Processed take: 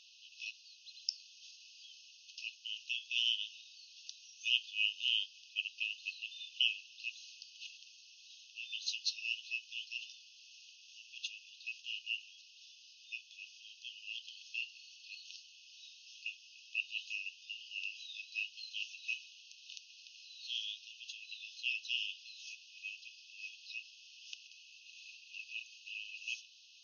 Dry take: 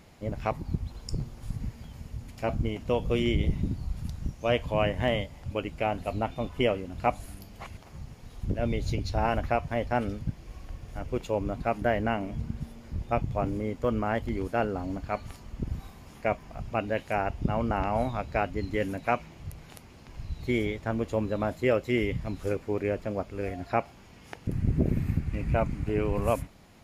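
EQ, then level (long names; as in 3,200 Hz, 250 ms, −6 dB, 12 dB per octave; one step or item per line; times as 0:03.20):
linear-phase brick-wall band-pass 2,500–6,600 Hz
+6.5 dB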